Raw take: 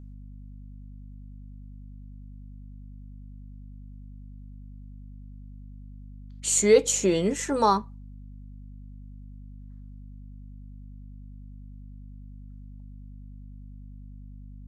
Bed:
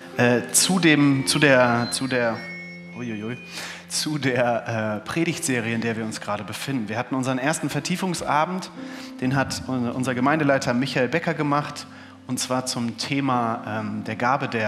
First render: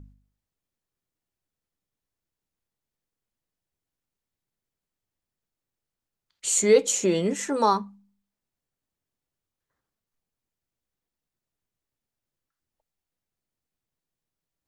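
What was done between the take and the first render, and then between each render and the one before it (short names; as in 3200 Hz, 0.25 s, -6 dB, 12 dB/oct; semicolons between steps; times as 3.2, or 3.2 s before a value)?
de-hum 50 Hz, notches 5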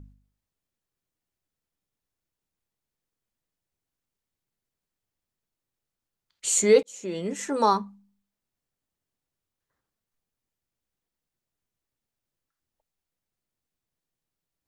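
6.83–7.64 fade in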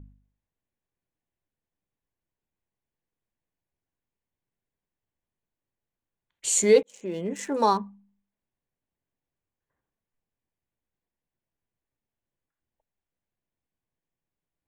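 Wiener smoothing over 9 samples; notch 1300 Hz, Q 6.7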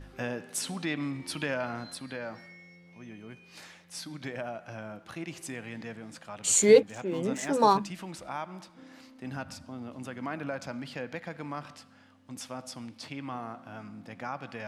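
add bed -16 dB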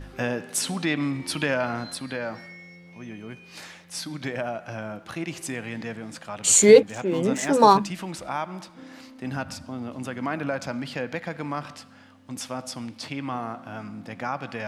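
gain +7 dB; limiter -3 dBFS, peak gain reduction 2 dB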